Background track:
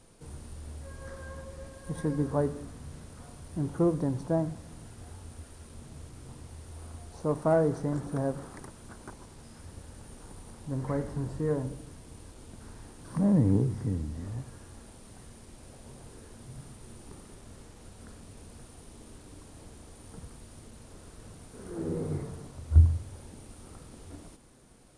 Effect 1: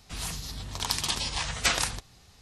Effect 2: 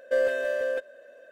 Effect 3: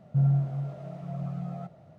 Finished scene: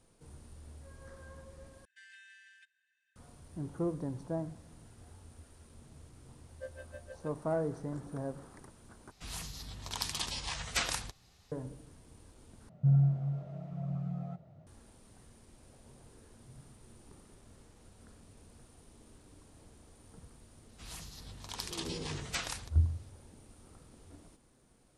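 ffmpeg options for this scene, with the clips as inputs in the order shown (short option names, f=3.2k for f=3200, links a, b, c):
-filter_complex "[2:a]asplit=2[a][b];[1:a]asplit=2[c][d];[0:a]volume=-8.5dB[e];[a]asuperpass=centerf=4500:order=20:qfactor=0.52[f];[b]aeval=exprs='val(0)*pow(10,-28*(0.5-0.5*cos(2*PI*6.4*n/s))/20)':c=same[g];[3:a]lowshelf=f=190:g=9[h];[e]asplit=4[i][j][k][l];[i]atrim=end=1.854[m];[f]atrim=end=1.31,asetpts=PTS-STARTPTS,volume=-14dB[n];[j]atrim=start=3.156:end=9.114[o];[c]atrim=end=2.41,asetpts=PTS-STARTPTS,volume=-7.5dB[p];[k]atrim=start=11.516:end=12.694[q];[h]atrim=end=1.98,asetpts=PTS-STARTPTS,volume=-8dB[r];[l]atrim=start=14.666[s];[g]atrim=end=1.31,asetpts=PTS-STARTPTS,volume=-17.5dB,afade=t=in:d=0.004:c=hsin,afade=t=out:st=1.306:d=0.004:c=hsin,adelay=6490[t];[d]atrim=end=2.41,asetpts=PTS-STARTPTS,volume=-12dB,afade=t=in:d=0.004:c=hsin,afade=t=out:st=2.406:d=0.004:c=hsin,adelay=20690[u];[m][n]acrossfade=d=0.004:c1=hsin:c2=hsin[v];[v][o]acrossfade=d=0.004:c1=hsin:c2=hsin[w];[w][p]acrossfade=d=0.004:c1=hsin:c2=hsin[x];[x][q]acrossfade=d=0.004:c1=hsin:c2=hsin[y];[y][r]acrossfade=d=0.004:c1=hsin:c2=hsin[z];[z][s]acrossfade=d=0.004:c1=hsin:c2=hsin[aa];[aa][t][u]amix=inputs=3:normalize=0"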